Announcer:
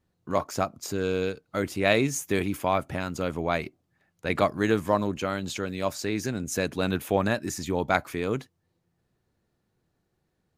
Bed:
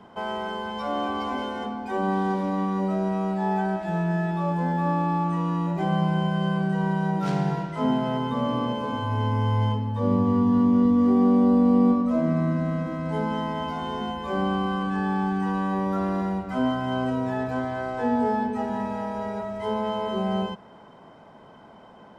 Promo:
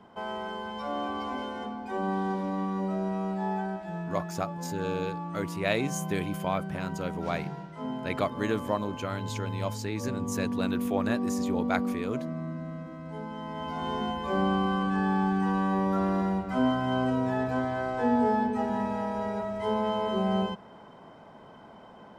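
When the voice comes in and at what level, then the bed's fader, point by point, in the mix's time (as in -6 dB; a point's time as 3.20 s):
3.80 s, -5.5 dB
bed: 3.42 s -5 dB
4.19 s -11.5 dB
13.34 s -11.5 dB
13.89 s -1 dB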